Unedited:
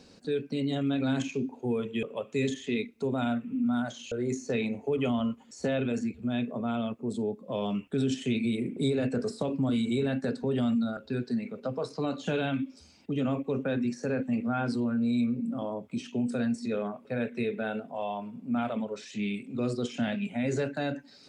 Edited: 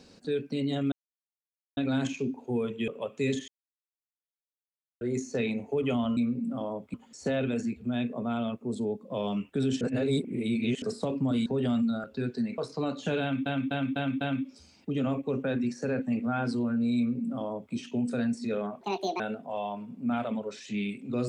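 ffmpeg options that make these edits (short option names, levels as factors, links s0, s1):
-filter_complex "[0:a]asplit=16[s0][s1][s2][s3][s4][s5][s6][s7][s8][s9][s10][s11][s12][s13][s14][s15];[s0]atrim=end=0.92,asetpts=PTS-STARTPTS,afade=t=out:st=0.916:d=0.004:c=hsin,apad=pad_dur=0.85[s16];[s1]atrim=start=0.92:end=2.63,asetpts=PTS-STARTPTS,afade=t=in:d=0.004:c=hsin,afade=t=out:st=1.706:d=0.004:c=hsin[s17];[s2]atrim=start=2.63:end=4.16,asetpts=PTS-STARTPTS,volume=0[s18];[s3]atrim=start=4.16:end=5.322,asetpts=PTS-STARTPTS,afade=t=in:d=0.004:c=hsin[s19];[s4]atrim=start=15.178:end=15.952[s20];[s5]atrim=start=5.318:end=8.192[s21];[s6]atrim=start=8.188:end=9.202,asetpts=PTS-STARTPTS,areverse[s22];[s7]atrim=start=9.198:end=9.842[s23];[s8]atrim=start=10.388:end=11.512[s24];[s9]atrim=start=11.788:end=12.672[s25];[s10]atrim=start=12.418:end=12.672[s26];[s11]atrim=start=12.418:end=12.672[s27];[s12]atrim=start=12.418:end=12.672[s28];[s13]atrim=start=12.418:end=17.024[s29];[s14]atrim=start=17.02:end=17.65,asetpts=PTS-STARTPTS,asetrate=71442,aresample=44100[s30];[s15]atrim=start=17.646[s31];[s16][s17][s18][s19]concat=n=4:v=0:a=1[s32];[s32][s20]acrossfade=d=0.004:c1=hsin:c2=hsin[s33];[s33][s21]acrossfade=d=0.004:c1=hsin:c2=hsin[s34];[s34][s22]acrossfade=d=0.004:c1=hsin:c2=hsin[s35];[s35][s23]acrossfade=d=0.004:c1=hsin:c2=hsin[s36];[s36][s24]acrossfade=d=0.004:c1=hsin:c2=hsin[s37];[s37][s25]acrossfade=d=0.004:c1=hsin:c2=hsin[s38];[s38][s26]acrossfade=d=0.004:c1=hsin:c2=hsin[s39];[s39][s27]acrossfade=d=0.004:c1=hsin:c2=hsin[s40];[s40][s28]acrossfade=d=0.004:c1=hsin:c2=hsin[s41];[s41][s29]acrossfade=d=0.004:c1=hsin:c2=hsin[s42];[s42][s30]acrossfade=d=0.004:c1=hsin:c2=hsin[s43];[s43][s31]acrossfade=d=0.004:c1=hsin:c2=hsin"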